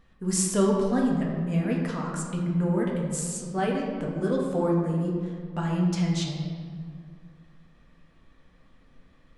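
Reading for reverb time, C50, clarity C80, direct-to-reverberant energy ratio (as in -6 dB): 2.1 s, 1.5 dB, 3.5 dB, -2.5 dB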